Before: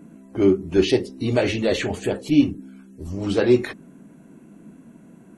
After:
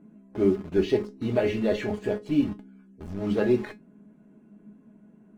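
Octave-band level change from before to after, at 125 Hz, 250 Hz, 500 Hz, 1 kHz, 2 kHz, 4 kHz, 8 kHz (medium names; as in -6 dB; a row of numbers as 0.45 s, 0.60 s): -6.0 dB, -5.5 dB, -4.5 dB, -5.0 dB, -7.5 dB, -11.5 dB, under -10 dB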